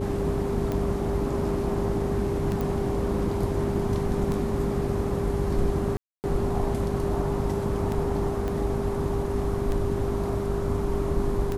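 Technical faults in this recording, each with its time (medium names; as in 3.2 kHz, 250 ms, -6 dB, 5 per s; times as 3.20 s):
hum 50 Hz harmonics 8 -32 dBFS
tick 33 1/3 rpm -17 dBFS
whine 400 Hz -30 dBFS
2.61 s: pop
5.97–6.24 s: dropout 269 ms
8.48 s: pop -19 dBFS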